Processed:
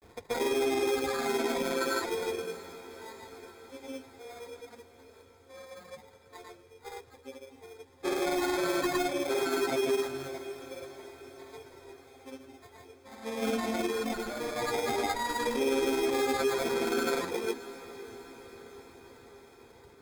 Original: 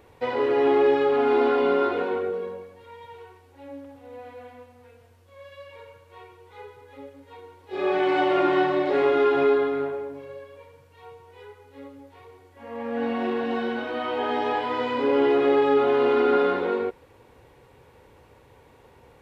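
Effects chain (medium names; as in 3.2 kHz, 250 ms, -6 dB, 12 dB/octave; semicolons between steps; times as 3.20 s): reverb removal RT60 1.9 s; peak limiter -20.5 dBFS, peak gain reduction 7 dB; sample-rate reducer 3 kHz, jitter 0%; granulator, pitch spread up and down by 0 st; echo that smears into a reverb 594 ms, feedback 62%, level -16 dB; speed mistake 25 fps video run at 24 fps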